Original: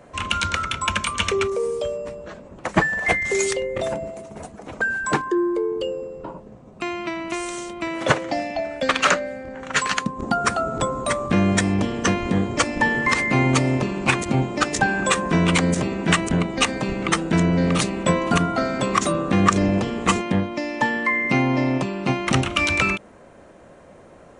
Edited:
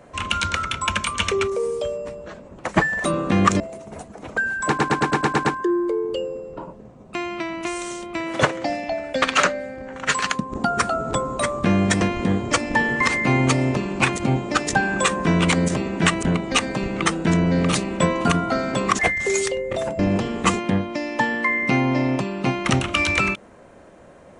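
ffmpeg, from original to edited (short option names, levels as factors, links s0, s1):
-filter_complex "[0:a]asplit=13[s0][s1][s2][s3][s4][s5][s6][s7][s8][s9][s10][s11][s12];[s0]atrim=end=3.042[s13];[s1]atrim=start=19.048:end=19.612[s14];[s2]atrim=start=4.038:end=5.232[s15];[s3]atrim=start=5.118:end=5.232[s16];[s4]atrim=start=5.118:end=5.232[s17];[s5]atrim=start=5.118:end=5.232[s18];[s6]atrim=start=5.118:end=5.232[s19];[s7]atrim=start=5.118:end=5.232[s20];[s8]atrim=start=5.118:end=5.232[s21];[s9]atrim=start=5.118:end=11.682[s22];[s10]atrim=start=12.068:end=19.052[s23];[s11]atrim=start=3.038:end=4.042[s24];[s12]atrim=start=19.608[s25];[s13][s14]acrossfade=d=0.004:c1=hsin:c2=hsin[s26];[s26][s15]acrossfade=d=0.004:c1=hsin:c2=hsin[s27];[s27][s16]acrossfade=d=0.004:c1=hsin:c2=hsin[s28];[s28][s17]acrossfade=d=0.004:c1=hsin:c2=hsin[s29];[s29][s18]acrossfade=d=0.004:c1=hsin:c2=hsin[s30];[s30][s19]acrossfade=d=0.004:c1=hsin:c2=hsin[s31];[s31][s20]acrossfade=d=0.004:c1=hsin:c2=hsin[s32];[s32][s21]acrossfade=d=0.004:c1=hsin:c2=hsin[s33];[s33][s22]acrossfade=d=0.004:c1=hsin:c2=hsin[s34];[s34][s23]acrossfade=d=0.004:c1=hsin:c2=hsin[s35];[s35][s24]acrossfade=d=0.004:c1=hsin:c2=hsin[s36];[s36][s25]acrossfade=d=0.004:c1=hsin:c2=hsin"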